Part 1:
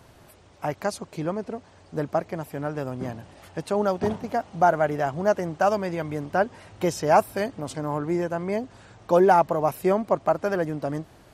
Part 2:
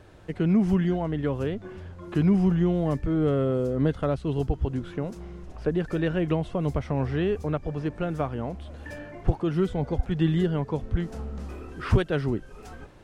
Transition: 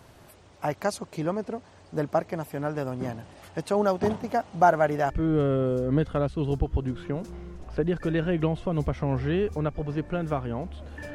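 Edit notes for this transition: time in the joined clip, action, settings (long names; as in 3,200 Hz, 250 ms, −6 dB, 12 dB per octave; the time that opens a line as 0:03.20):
part 1
0:05.10: continue with part 2 from 0:02.98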